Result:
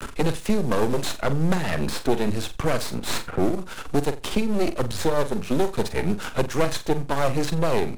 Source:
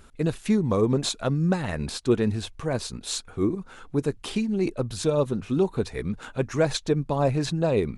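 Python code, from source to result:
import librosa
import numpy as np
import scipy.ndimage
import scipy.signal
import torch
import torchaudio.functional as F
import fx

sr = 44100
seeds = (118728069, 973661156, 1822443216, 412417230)

p1 = fx.cvsd(x, sr, bps=64000)
p2 = np.maximum(p1, 0.0)
p3 = fx.rider(p2, sr, range_db=10, speed_s=0.5)
p4 = p2 + (p3 * 10.0 ** (-0.5 / 20.0))
p5 = fx.room_flutter(p4, sr, wall_m=7.5, rt60_s=0.23)
y = fx.band_squash(p5, sr, depth_pct=70)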